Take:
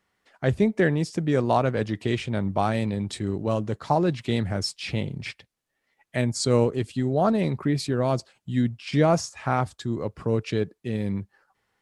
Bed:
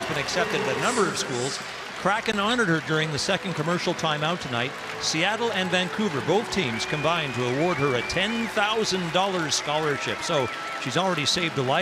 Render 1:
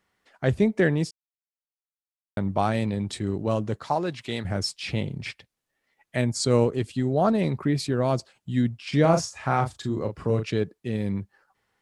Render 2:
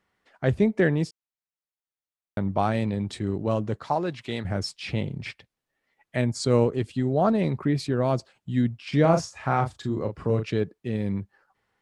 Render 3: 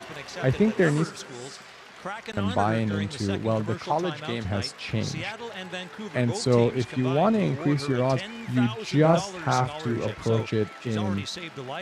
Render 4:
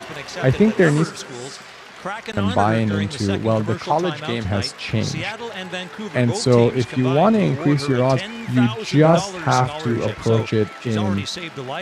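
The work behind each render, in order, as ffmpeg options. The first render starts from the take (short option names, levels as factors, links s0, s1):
-filter_complex "[0:a]asettb=1/sr,asplit=3[s0][s1][s2];[s0]atrim=end=3.834[s3];[s1]atrim=start=3.83:end=4.45,asetpts=PTS-STARTPTS,afade=t=in:d=0.004:c=qsin,afade=t=out:st=0.616:d=0.004:c=qsin,lowshelf=f=400:g=-10[s4];[s2]atrim=start=4.446[s5];[s3][s4]acrossfade=d=0.004:c1=hsin:c2=qsin[s6];[s6][s5]acrossfade=d=0.004:c1=qsin:c2=hsin,asettb=1/sr,asplit=3[s7][s8][s9];[s7]atrim=end=9.014[s10];[s8]atrim=start=9.01:end=10.5,asetpts=PTS-STARTPTS,afade=t=in:d=0.004:c=qsin,afade=t=out:st=1.486:d=0.004:c=qsin,asplit=2[s11][s12];[s12]adelay=37,volume=0.447[s13];[s11][s13]amix=inputs=2:normalize=0,atrim=end_sample=65709[s14];[s9]atrim=start=10.496[s15];[s10][s14]acrossfade=d=0.004:c1=hsin:c2=qsin[s16];[s16][s15]acrossfade=d=0.004:c1=qsin:c2=hsin,asplit=3[s17][s18][s19];[s17]atrim=end=1.11,asetpts=PTS-STARTPTS,afade=t=out:st=1.106:d=0.004:c=hsin[s20];[s18]atrim=start=1.11:end=2.37,asetpts=PTS-STARTPTS,volume=0[s21];[s19]atrim=start=2.37,asetpts=PTS-STARTPTS,afade=t=in:d=0.004:c=hsin[s22];[s20][s21][s22]concat=n=3:v=0:a=1"
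-af "highshelf=f=4900:g=-7.5"
-filter_complex "[1:a]volume=0.266[s0];[0:a][s0]amix=inputs=2:normalize=0"
-af "volume=2.11,alimiter=limit=0.794:level=0:latency=1"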